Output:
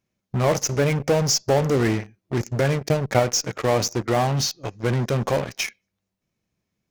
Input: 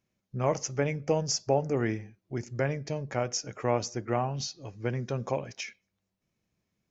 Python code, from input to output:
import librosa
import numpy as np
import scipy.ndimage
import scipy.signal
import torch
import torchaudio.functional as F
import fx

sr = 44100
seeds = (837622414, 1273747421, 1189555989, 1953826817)

p1 = fx.transient(x, sr, attack_db=10, sustain_db=-6, at=(2.77, 3.22), fade=0.02)
p2 = fx.fuzz(p1, sr, gain_db=39.0, gate_db=-40.0)
p3 = p1 + (p2 * librosa.db_to_amplitude(-10.0))
y = p3 * librosa.db_to_amplitude(1.5)